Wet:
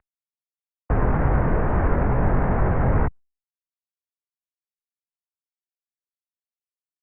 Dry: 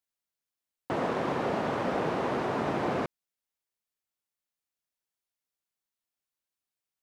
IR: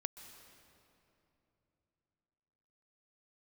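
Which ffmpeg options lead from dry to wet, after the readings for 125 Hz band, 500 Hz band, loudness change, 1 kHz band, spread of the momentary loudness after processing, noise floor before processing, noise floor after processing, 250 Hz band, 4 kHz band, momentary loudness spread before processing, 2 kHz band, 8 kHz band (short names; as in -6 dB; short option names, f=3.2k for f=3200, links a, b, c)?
+18.0 dB, +3.5 dB, +8.0 dB, +4.0 dB, 3 LU, under -85 dBFS, under -85 dBFS, +6.5 dB, under -15 dB, 4 LU, +4.0 dB, under -25 dB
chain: -filter_complex "[0:a]highpass=51,flanger=delay=16.5:depth=6.6:speed=2.3,acompressor=mode=upward:threshold=-51dB:ratio=2.5,alimiter=level_in=5dB:limit=-24dB:level=0:latency=1:release=22,volume=-5dB,aeval=exprs='val(0)*gte(abs(val(0)),0.00211)':c=same,asplit=2[a][b];[b]lowshelf=f=430:t=q:w=1.5:g=13.5[c];[1:a]atrim=start_sample=2205,afade=t=out:st=0.16:d=0.01,atrim=end_sample=7497[d];[c][d]afir=irnorm=-1:irlink=0,volume=1dB[e];[a][e]amix=inputs=2:normalize=0,highpass=f=170:t=q:w=0.5412,highpass=f=170:t=q:w=1.307,lowpass=f=2.2k:t=q:w=0.5176,lowpass=f=2.2k:t=q:w=0.7071,lowpass=f=2.2k:t=q:w=1.932,afreqshift=-230,volume=9dB" -ar 48000 -c:a libopus -b:a 64k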